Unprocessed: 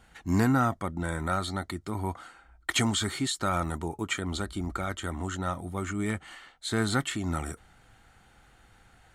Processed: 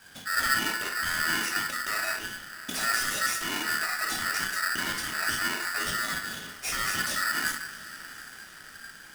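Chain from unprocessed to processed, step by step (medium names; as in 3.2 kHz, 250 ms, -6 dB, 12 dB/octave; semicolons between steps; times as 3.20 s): treble shelf 5.4 kHz +11 dB; peak limiter -24.5 dBFS, peak gain reduction 14.5 dB; echo that smears into a reverb 746 ms, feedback 52%, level -16 dB; simulated room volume 480 m³, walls furnished, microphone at 2.7 m; polarity switched at an audio rate 1.6 kHz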